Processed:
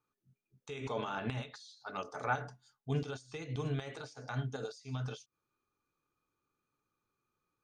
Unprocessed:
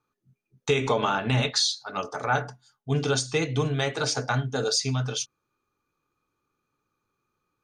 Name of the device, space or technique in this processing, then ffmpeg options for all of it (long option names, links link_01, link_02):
de-esser from a sidechain: -filter_complex "[0:a]asplit=2[link_01][link_02];[link_02]highpass=frequency=4100:width=0.5412,highpass=frequency=4100:width=1.3066,apad=whole_len=336866[link_03];[link_01][link_03]sidechaincompress=threshold=-49dB:ratio=6:attack=3.9:release=87,volume=-7dB"